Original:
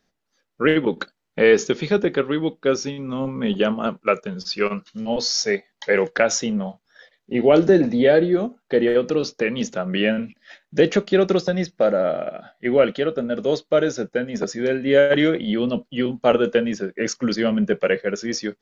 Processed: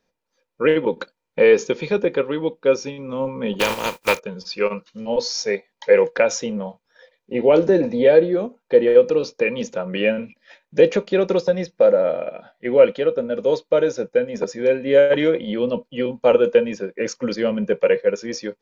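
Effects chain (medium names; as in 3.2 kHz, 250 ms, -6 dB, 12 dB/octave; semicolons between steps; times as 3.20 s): 3.59–4.18 s: spectral contrast reduction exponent 0.3; small resonant body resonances 510/930/2400 Hz, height 13 dB, ringing for 45 ms; trim -4 dB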